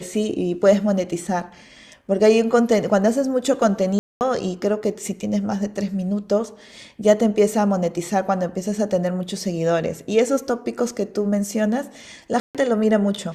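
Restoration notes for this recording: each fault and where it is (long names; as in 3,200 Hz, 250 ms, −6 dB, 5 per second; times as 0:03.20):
0:03.99–0:04.21: drop-out 219 ms
0:12.40–0:12.55: drop-out 147 ms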